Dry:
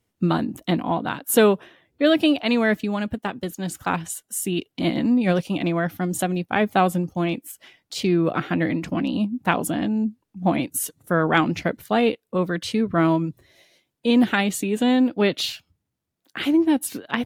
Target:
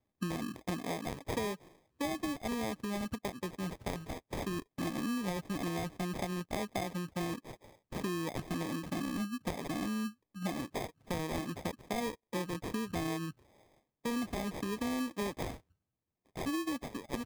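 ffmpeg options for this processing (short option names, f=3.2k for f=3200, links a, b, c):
-af "acrusher=samples=31:mix=1:aa=0.000001,acompressor=threshold=-25dB:ratio=6,volume=-8dB"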